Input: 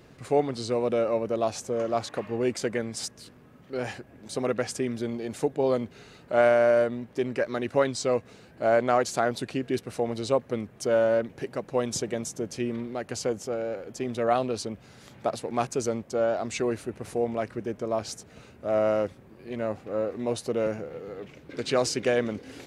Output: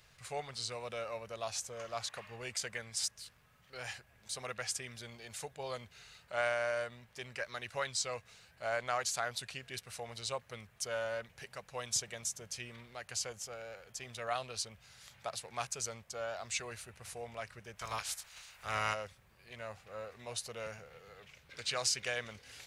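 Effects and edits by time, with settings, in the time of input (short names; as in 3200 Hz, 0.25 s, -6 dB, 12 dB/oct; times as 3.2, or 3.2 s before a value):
17.77–18.93 spectral limiter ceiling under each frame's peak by 21 dB
whole clip: passive tone stack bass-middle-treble 10-0-10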